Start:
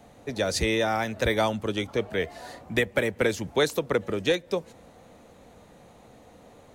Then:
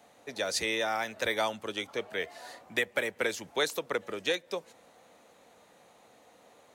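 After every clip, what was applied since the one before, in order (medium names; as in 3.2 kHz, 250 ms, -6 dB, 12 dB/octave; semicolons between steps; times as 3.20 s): high-pass 760 Hz 6 dB/octave; trim -2 dB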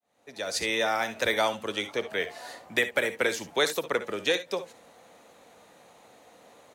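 fade-in on the opening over 0.83 s; early reflections 58 ms -14 dB, 71 ms -15.5 dB; trim +4 dB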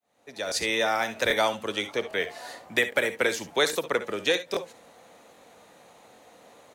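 crackling interface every 0.81 s, samples 1024, repeat, from 0.47 s; trim +1.5 dB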